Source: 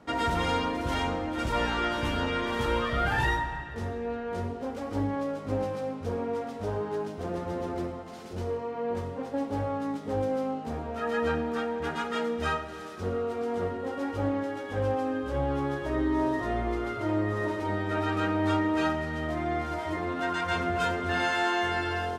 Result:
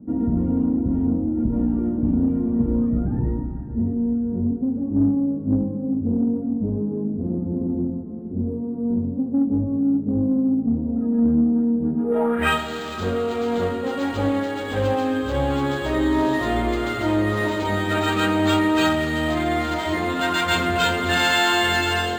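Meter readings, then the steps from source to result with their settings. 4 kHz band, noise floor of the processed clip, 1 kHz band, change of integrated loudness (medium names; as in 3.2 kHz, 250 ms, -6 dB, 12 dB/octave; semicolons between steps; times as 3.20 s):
+10.5 dB, -29 dBFS, +4.0 dB, +8.0 dB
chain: on a send: echo that smears into a reverb 507 ms, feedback 41%, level -14 dB; on the sum: low-pass sweep 250 Hz -> 4.3 kHz, 11.97–12.59 s; peaking EQ 220 Hz +5 dB 0.49 oct; in parallel at -6 dB: saturation -23 dBFS, distortion -15 dB; on the sum: dynamic bell 3.7 kHz, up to +6 dB, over -44 dBFS, Q 0.82; decimation joined by straight lines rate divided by 4×; trim +3 dB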